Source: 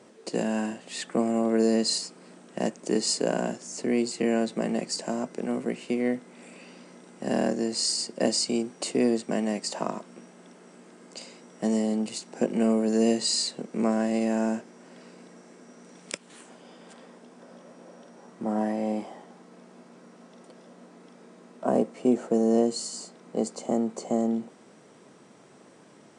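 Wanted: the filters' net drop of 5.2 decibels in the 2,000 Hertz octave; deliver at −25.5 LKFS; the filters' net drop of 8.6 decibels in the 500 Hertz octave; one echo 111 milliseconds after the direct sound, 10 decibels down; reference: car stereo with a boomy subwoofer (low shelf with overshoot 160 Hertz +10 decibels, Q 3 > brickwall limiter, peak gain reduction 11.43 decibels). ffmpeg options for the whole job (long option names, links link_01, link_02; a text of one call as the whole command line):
ffmpeg -i in.wav -af "lowshelf=frequency=160:width_type=q:width=3:gain=10,equalizer=frequency=500:width_type=o:gain=-9,equalizer=frequency=2000:width_type=o:gain=-6,aecho=1:1:111:0.316,volume=8.5dB,alimiter=limit=-14.5dB:level=0:latency=1" out.wav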